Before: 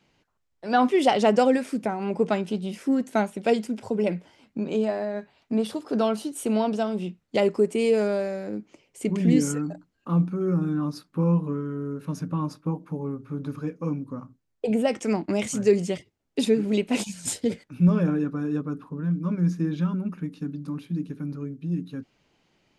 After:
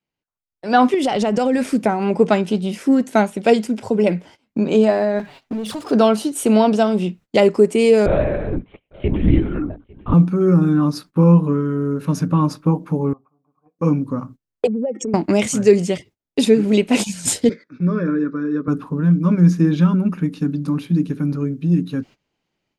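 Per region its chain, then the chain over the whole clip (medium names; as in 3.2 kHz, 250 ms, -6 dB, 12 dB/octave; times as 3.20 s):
0.94–1.73 s: bass shelf 120 Hz +11.5 dB + compression 10:1, threshold -22 dBFS
5.19–5.91 s: touch-sensitive flanger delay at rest 8.9 ms, full sweep at -20 dBFS + compression 12:1, threshold -33 dBFS + power-law waveshaper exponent 0.7
8.06–10.14 s: LPC vocoder at 8 kHz whisper + delay 848 ms -23.5 dB
13.13–13.79 s: cascade formant filter a + hum notches 60/120/180 Hz
14.67–15.14 s: spectral contrast enhancement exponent 2.4 + high-pass 260 Hz + compression 4:1, threshold -31 dBFS
17.49–18.68 s: band-pass 310–5100 Hz + treble shelf 2.6 kHz -10 dB + static phaser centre 2.9 kHz, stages 6
whole clip: gate -49 dBFS, range -20 dB; level rider gain up to 11.5 dB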